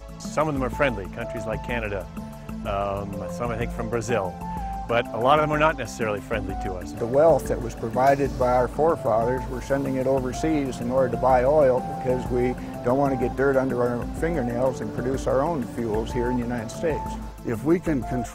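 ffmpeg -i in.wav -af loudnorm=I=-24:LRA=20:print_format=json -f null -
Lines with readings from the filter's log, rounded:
"input_i" : "-24.6",
"input_tp" : "-5.3",
"input_lra" : "5.4",
"input_thresh" : "-34.7",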